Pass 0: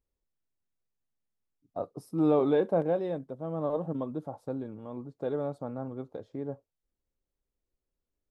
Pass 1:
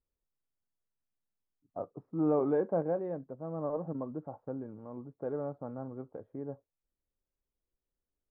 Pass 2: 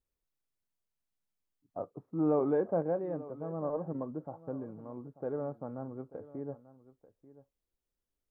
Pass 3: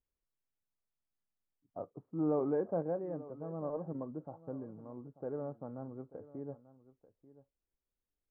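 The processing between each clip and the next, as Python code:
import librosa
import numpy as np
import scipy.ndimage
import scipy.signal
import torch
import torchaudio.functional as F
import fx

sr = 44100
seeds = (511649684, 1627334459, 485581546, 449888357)

y1 = scipy.signal.sosfilt(scipy.signal.butter(4, 1700.0, 'lowpass', fs=sr, output='sos'), x)
y1 = F.gain(torch.from_numpy(y1), -4.0).numpy()
y2 = y1 + 10.0 ** (-17.5 / 20.0) * np.pad(y1, (int(889 * sr / 1000.0), 0))[:len(y1)]
y3 = fx.air_absorb(y2, sr, metres=500.0)
y3 = F.gain(torch.from_numpy(y3), -2.5).numpy()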